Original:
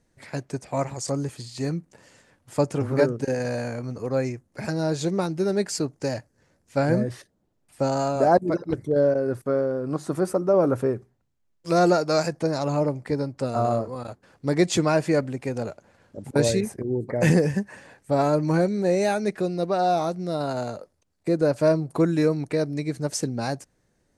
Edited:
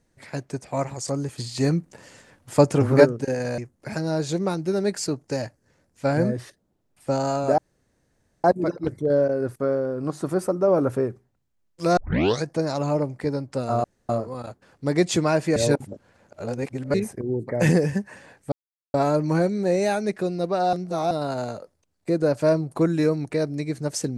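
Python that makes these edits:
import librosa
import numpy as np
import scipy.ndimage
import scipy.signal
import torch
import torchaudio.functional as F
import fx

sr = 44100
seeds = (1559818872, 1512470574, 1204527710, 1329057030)

y = fx.edit(x, sr, fx.clip_gain(start_s=1.38, length_s=1.67, db=6.0),
    fx.cut(start_s=3.58, length_s=0.72),
    fx.insert_room_tone(at_s=8.3, length_s=0.86),
    fx.tape_start(start_s=11.83, length_s=0.48),
    fx.insert_room_tone(at_s=13.7, length_s=0.25),
    fx.reverse_span(start_s=15.17, length_s=1.38),
    fx.insert_silence(at_s=18.13, length_s=0.42),
    fx.reverse_span(start_s=19.92, length_s=0.38), tone=tone)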